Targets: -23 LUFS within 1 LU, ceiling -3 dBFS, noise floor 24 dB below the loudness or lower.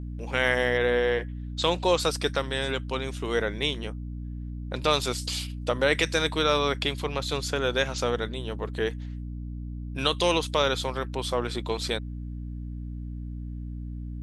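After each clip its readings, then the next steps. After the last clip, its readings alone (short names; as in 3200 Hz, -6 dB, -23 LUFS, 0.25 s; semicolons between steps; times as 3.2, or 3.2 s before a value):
hum 60 Hz; harmonics up to 300 Hz; hum level -33 dBFS; loudness -28.0 LUFS; peak -8.5 dBFS; loudness target -23.0 LUFS
-> notches 60/120/180/240/300 Hz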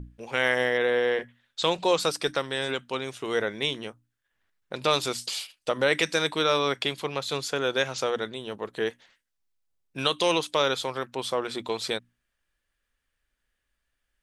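hum none; loudness -27.0 LUFS; peak -9.0 dBFS; loudness target -23.0 LUFS
-> gain +4 dB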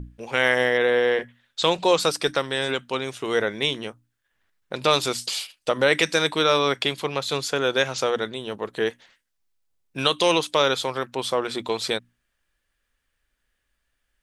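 loudness -23.0 LUFS; peak -5.0 dBFS; noise floor -76 dBFS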